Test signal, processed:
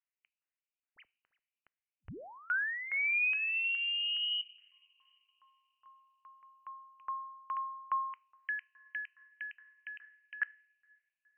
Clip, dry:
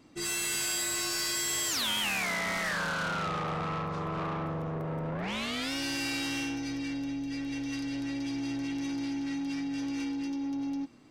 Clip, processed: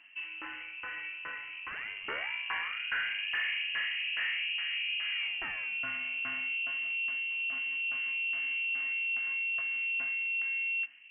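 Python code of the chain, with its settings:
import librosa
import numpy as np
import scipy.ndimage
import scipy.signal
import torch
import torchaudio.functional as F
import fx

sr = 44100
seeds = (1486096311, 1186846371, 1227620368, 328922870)

y = 10.0 ** (-29.0 / 20.0) * np.tanh(x / 10.0 ** (-29.0 / 20.0))
y = fx.rev_double_slope(y, sr, seeds[0], early_s=0.5, late_s=3.5, knee_db=-18, drr_db=16.5)
y = fx.filter_lfo_lowpass(y, sr, shape='saw_down', hz=2.4, low_hz=430.0, high_hz=1600.0, q=1.7)
y = fx.freq_invert(y, sr, carrier_hz=3000)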